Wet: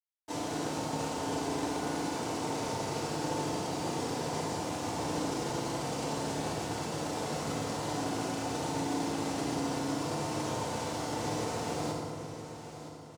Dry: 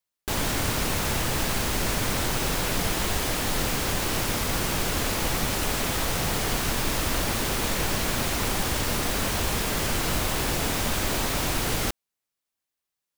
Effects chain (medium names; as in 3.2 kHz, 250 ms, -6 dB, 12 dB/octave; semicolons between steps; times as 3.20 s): peak limiter -24 dBFS, peak gain reduction 11 dB; ladder band-pass 650 Hz, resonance 45%; noise-vocoded speech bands 2; word length cut 12-bit, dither none; feedback delay 966 ms, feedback 42%, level -12 dB; FDN reverb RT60 2.1 s, low-frequency decay 1.55×, high-frequency decay 0.55×, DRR -5 dB; trim +7.5 dB